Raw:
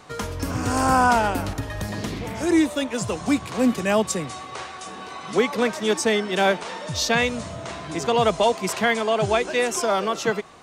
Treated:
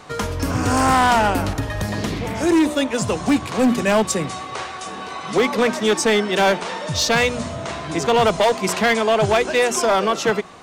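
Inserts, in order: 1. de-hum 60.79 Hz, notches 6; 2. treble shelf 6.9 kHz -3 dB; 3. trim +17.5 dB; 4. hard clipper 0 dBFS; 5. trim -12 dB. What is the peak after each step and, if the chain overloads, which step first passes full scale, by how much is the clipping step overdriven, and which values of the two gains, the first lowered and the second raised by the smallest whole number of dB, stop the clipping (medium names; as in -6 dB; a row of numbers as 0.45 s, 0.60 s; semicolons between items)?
-9.0 dBFS, -9.0 dBFS, +8.5 dBFS, 0.0 dBFS, -12.0 dBFS; step 3, 8.5 dB; step 3 +8.5 dB, step 5 -3 dB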